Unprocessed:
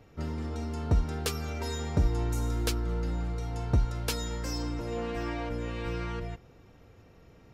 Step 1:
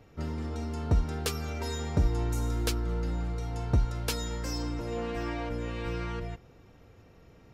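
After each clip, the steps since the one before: no audible change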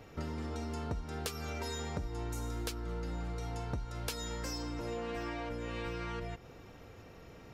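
bass shelf 290 Hz -5.5 dB; compression 6:1, threshold -42 dBFS, peak gain reduction 16.5 dB; trim +6 dB

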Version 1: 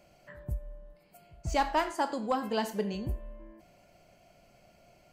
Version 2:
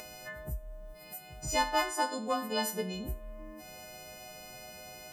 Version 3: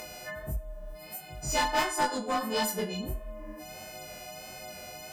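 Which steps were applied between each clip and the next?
partials quantised in pitch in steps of 3 st; upward compressor, threshold -33 dBFS; trim -2.5 dB
chorus 1.5 Hz, delay 19 ms, depth 7 ms; one-sided clip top -34 dBFS; trim +7 dB

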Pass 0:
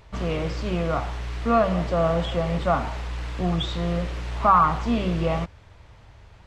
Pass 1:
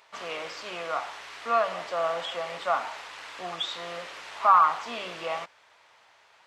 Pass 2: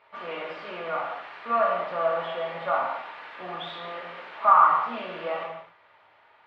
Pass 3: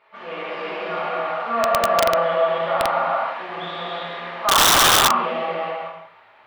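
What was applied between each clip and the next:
high-pass 810 Hz 12 dB/octave
distance through air 460 m; gated-style reverb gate 300 ms falling, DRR -2.5 dB
gated-style reverb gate 480 ms flat, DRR -6.5 dB; integer overflow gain 9 dB

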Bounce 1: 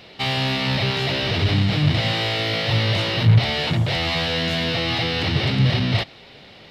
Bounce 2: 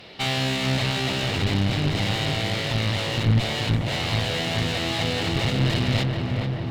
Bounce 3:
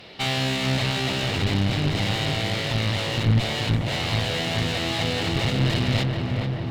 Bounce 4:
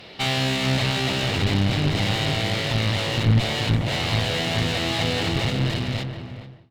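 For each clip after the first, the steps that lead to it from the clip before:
filtered feedback delay 431 ms, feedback 69%, low-pass 1.8 kHz, level -5 dB; one-sided clip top -26 dBFS; gain riding within 3 dB 2 s; trim -2 dB
no audible change
fade out at the end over 1.49 s; trim +1.5 dB

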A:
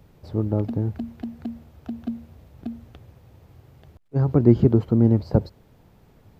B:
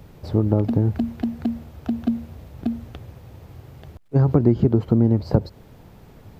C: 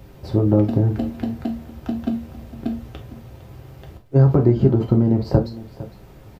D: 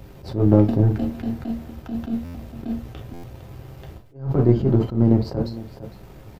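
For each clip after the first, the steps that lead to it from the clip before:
compression 4:1, threshold -22 dBFS, peak gain reduction 12 dB; trim +8 dB
delay 457 ms -17 dB; on a send at -1.5 dB: reverberation, pre-delay 3 ms
partial rectifier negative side -3 dB; buffer glitch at 2.24/3.13 s, samples 512, times 8; attacks held to a fixed rise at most 150 dB/s; trim +2.5 dB

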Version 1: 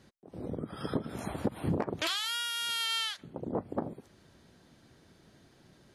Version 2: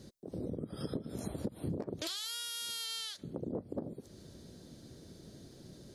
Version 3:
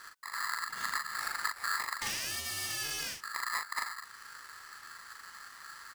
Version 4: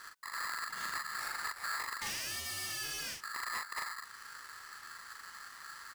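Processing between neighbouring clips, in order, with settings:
high-order bell 1.5 kHz -11.5 dB 2.3 oct; compression 3:1, threshold -47 dBFS, peak gain reduction 16 dB; trim +8 dB
doubling 40 ms -4.5 dB; polarity switched at an audio rate 1.5 kHz; trim +2 dB
saturation -33 dBFS, distortion -11 dB

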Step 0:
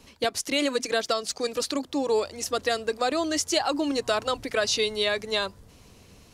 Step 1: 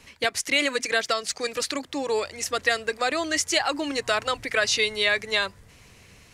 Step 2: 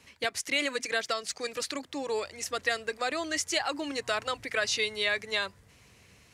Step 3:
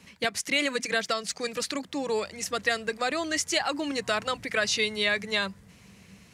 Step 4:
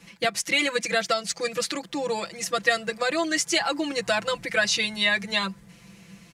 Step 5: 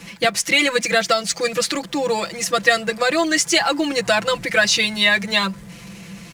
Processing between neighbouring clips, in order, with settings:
graphic EQ 125/250/2000/8000 Hz +3/-3/+11/+4 dB; trim -1.5 dB
high-pass 52 Hz; trim -6 dB
peaking EQ 190 Hz +14 dB 0.46 oct; trim +2.5 dB
comb 5.9 ms, depth 99%
companding laws mixed up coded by mu; trim +6 dB

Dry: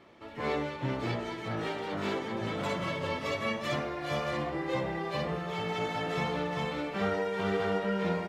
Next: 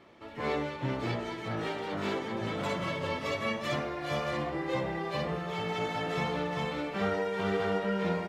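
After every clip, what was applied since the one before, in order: no audible change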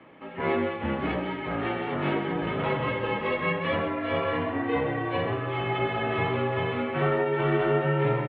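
mistuned SSB -51 Hz 160–3100 Hz; delay 130 ms -10 dB; trim +5.5 dB

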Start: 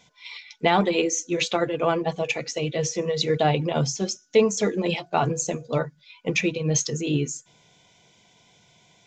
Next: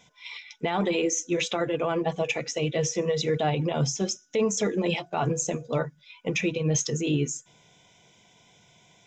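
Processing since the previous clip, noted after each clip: band-stop 4.4 kHz, Q 5.1; peak limiter -16.5 dBFS, peak gain reduction 10 dB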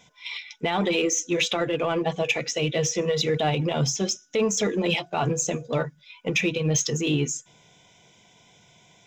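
dynamic bell 3.3 kHz, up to +5 dB, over -44 dBFS, Q 0.92; in parallel at -11 dB: hard clipper -27.5 dBFS, distortion -7 dB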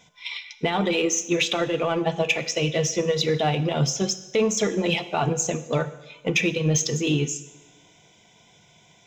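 transient shaper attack +3 dB, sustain -1 dB; two-slope reverb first 0.95 s, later 2.5 s, from -18 dB, DRR 11.5 dB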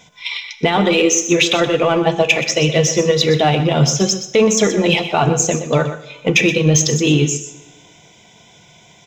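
delay 124 ms -11 dB; trim +8.5 dB

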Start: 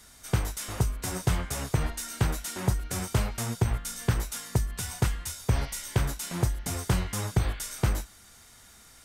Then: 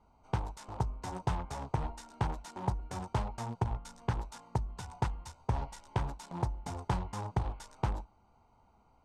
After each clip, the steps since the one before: local Wiener filter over 25 samples; low-pass 6.1 kHz 12 dB/octave; peaking EQ 890 Hz +13.5 dB 0.54 oct; trim -7.5 dB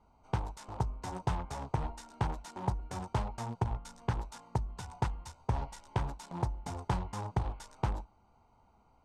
no audible change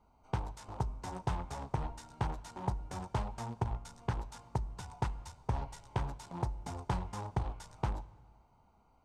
reverberation RT60 1.6 s, pre-delay 3 ms, DRR 19 dB; trim -2 dB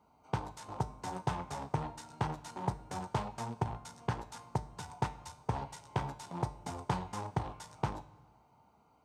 high-pass 110 Hz 12 dB/octave; feedback comb 150 Hz, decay 0.41 s, harmonics all, mix 60%; trim +9 dB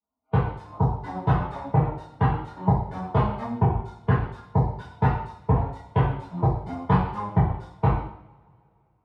expander on every frequency bin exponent 2; distance through air 460 m; two-slope reverb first 0.65 s, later 2.7 s, from -27 dB, DRR -10 dB; trim +8 dB

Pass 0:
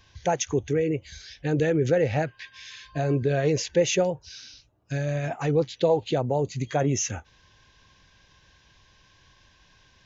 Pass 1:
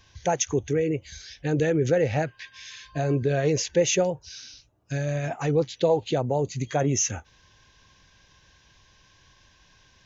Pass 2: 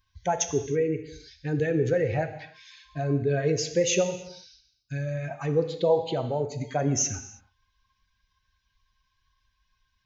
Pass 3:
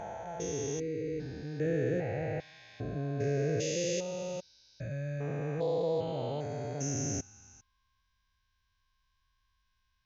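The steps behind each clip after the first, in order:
peaking EQ 6.2 kHz +4 dB 0.39 oct
expander on every frequency bin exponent 1.5; gated-style reverb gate 350 ms falling, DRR 7.5 dB
spectrogram pixelated in time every 400 ms; trim -3 dB

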